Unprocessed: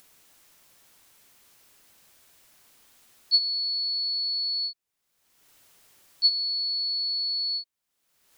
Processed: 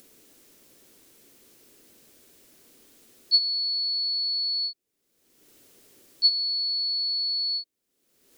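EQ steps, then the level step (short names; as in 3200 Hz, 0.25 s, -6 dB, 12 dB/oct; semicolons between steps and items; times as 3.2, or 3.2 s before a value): tone controls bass -9 dB, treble +2 dB; bell 250 Hz +3.5 dB 0.64 oct; resonant low shelf 580 Hz +12 dB, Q 1.5; 0.0 dB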